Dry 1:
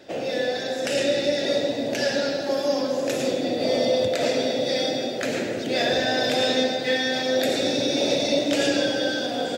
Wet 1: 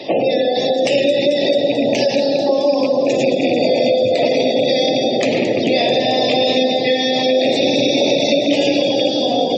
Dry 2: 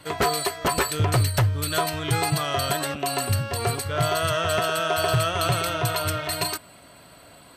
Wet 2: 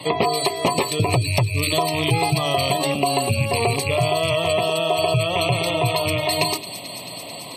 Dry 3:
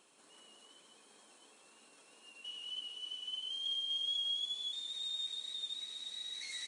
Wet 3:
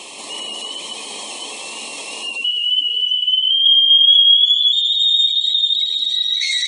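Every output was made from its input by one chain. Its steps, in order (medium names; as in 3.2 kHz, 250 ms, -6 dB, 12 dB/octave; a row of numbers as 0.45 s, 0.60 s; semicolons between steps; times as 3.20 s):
rattle on loud lows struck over -30 dBFS, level -20 dBFS; spectral gate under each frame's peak -25 dB strong; high-pass 110 Hz 24 dB/octave; treble shelf 7.1 kHz -10.5 dB; hum notches 50/100/150/200/250/300/350/400/450/500 Hz; compression 4:1, threshold -31 dBFS; Butterworth band-stop 1.5 kHz, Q 1.6; feedback echo behind a high-pass 220 ms, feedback 78%, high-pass 3.8 kHz, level -10 dB; tape noise reduction on one side only encoder only; peak normalisation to -3 dBFS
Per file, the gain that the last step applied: +17.5 dB, +14.0 dB, +27.5 dB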